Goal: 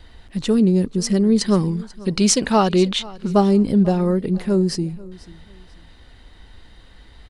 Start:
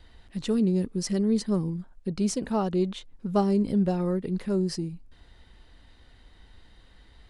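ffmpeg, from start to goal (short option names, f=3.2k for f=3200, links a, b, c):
-filter_complex "[0:a]asettb=1/sr,asplit=3[a][b][c];[a]atrim=end=1.414[d];[b]atrim=start=1.41:end=3.33,asetpts=PTS-STARTPTS,afade=t=in:d=0.004:c=qsin,afade=t=out:st=1.916:d=0.004:c=qsin,equalizer=f=3.5k:w=0.31:g=10.5[e];[c]atrim=start=3.326[f];[d][e]acrossfade=d=0.004:c1=hsin:c2=qsin[g];[g][f]acrossfade=d=0.004:c1=qsin:c2=hsin,asplit=2[h][i];[i]aecho=0:1:490|980:0.0891|0.0232[j];[h][j]amix=inputs=2:normalize=0,volume=8dB"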